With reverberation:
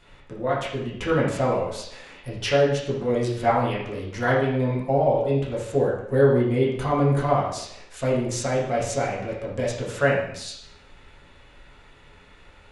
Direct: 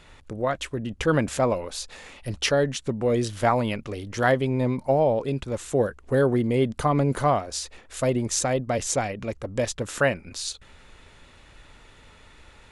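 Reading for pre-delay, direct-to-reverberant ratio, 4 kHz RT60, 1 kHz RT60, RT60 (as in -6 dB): 5 ms, -7.0 dB, 0.70 s, 0.70 s, 0.75 s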